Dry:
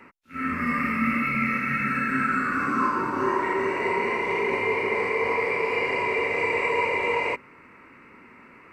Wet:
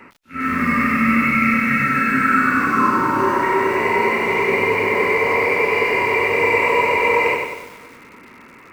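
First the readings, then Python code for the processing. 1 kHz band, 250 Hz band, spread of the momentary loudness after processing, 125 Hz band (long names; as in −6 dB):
+8.0 dB, +8.0 dB, 4 LU, +7.5 dB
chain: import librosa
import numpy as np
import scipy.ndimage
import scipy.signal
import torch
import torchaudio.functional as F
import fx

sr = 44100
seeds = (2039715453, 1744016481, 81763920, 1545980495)

y = fx.echo_feedback(x, sr, ms=267, feedback_pct=53, wet_db=-21)
y = fx.echo_crushed(y, sr, ms=97, feedback_pct=55, bits=8, wet_db=-4.0)
y = F.gain(torch.from_numpy(y), 6.0).numpy()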